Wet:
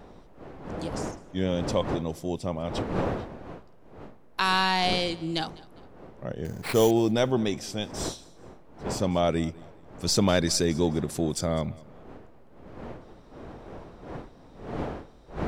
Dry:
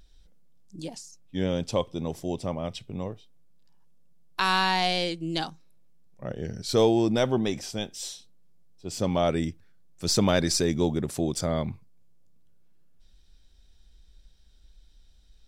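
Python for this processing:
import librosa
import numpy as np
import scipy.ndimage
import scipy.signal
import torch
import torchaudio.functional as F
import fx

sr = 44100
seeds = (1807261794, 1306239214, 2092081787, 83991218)

y = fx.dmg_wind(x, sr, seeds[0], corner_hz=550.0, level_db=-39.0)
y = fx.sample_hold(y, sr, seeds[1], rate_hz=6500.0, jitter_pct=0, at=(6.45, 6.91))
y = fx.echo_feedback(y, sr, ms=203, feedback_pct=32, wet_db=-22.0)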